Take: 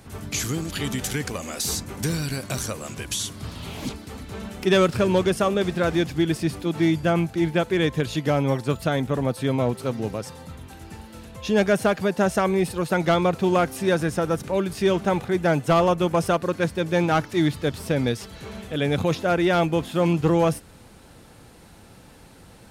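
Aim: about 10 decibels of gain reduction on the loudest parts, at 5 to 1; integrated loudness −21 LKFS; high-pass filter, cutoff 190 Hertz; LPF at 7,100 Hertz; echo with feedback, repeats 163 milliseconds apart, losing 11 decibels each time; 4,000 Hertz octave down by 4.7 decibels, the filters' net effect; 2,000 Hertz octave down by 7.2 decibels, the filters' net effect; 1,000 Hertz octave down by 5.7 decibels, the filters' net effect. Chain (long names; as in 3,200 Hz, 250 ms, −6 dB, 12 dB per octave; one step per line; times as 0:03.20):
high-pass filter 190 Hz
low-pass filter 7,100 Hz
parametric band 1,000 Hz −6.5 dB
parametric band 2,000 Hz −6.5 dB
parametric band 4,000 Hz −3 dB
downward compressor 5 to 1, threshold −28 dBFS
repeating echo 163 ms, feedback 28%, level −11 dB
level +12 dB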